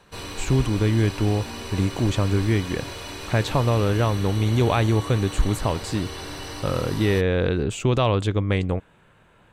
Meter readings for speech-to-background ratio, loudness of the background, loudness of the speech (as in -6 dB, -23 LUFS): 11.5 dB, -34.5 LUFS, -23.0 LUFS